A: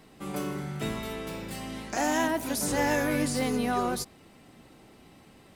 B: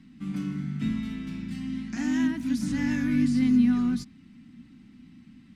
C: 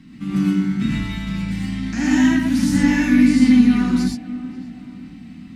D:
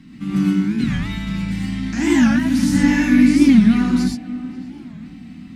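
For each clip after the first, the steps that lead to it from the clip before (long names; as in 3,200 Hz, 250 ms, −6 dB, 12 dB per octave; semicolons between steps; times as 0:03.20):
drawn EQ curve 120 Hz 0 dB, 250 Hz +11 dB, 400 Hz −19 dB, 590 Hz −24 dB, 1,400 Hz −8 dB, 2,000 Hz −4 dB, 5,800 Hz −8 dB, 15,000 Hz −24 dB
tape delay 538 ms, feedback 54%, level −14.5 dB, low-pass 1,300 Hz; reverb whose tail is shaped and stops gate 140 ms rising, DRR −3.5 dB; level +7.5 dB
wow of a warped record 45 rpm, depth 250 cents; level +1 dB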